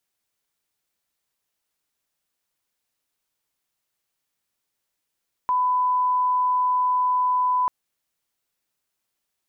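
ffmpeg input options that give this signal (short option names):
-f lavfi -i "sine=f=1000:d=2.19:r=44100,volume=0.06dB"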